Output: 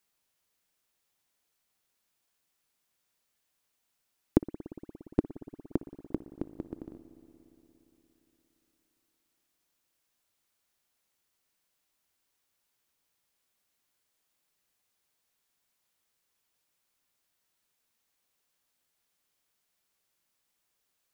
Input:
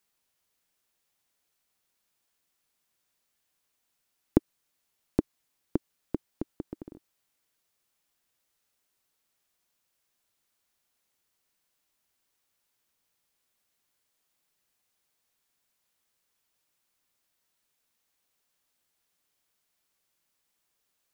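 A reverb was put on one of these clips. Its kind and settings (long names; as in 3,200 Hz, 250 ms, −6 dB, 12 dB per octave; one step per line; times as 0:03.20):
spring reverb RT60 3.8 s, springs 58 ms, chirp 55 ms, DRR 12.5 dB
level −1 dB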